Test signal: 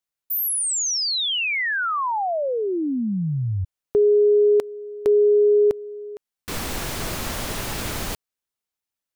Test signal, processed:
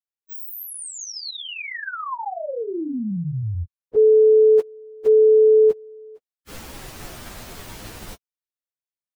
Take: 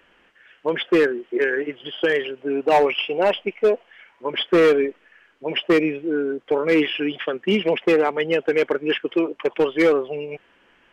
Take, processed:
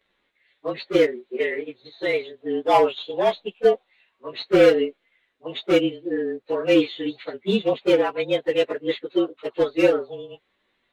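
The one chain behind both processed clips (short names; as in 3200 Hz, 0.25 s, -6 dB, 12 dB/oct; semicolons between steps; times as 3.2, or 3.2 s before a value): inharmonic rescaling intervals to 109%; upward expander 1.5:1, over -38 dBFS; gain +3 dB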